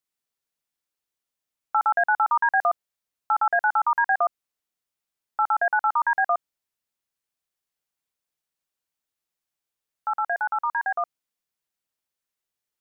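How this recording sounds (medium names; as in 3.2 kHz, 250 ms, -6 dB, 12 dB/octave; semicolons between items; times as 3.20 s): noise floor -87 dBFS; spectral tilt +0.5 dB/octave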